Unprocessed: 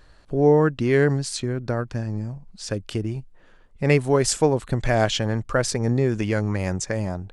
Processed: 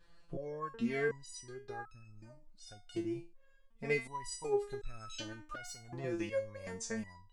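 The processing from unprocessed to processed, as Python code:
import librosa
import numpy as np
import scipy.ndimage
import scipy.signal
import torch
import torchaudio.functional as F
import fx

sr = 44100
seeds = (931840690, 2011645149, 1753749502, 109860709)

y = fx.tube_stage(x, sr, drive_db=20.0, bias=0.35, at=(5.33, 6.04))
y = fx.resonator_held(y, sr, hz=2.7, low_hz=170.0, high_hz=1300.0)
y = F.gain(torch.from_numpy(y), 1.0).numpy()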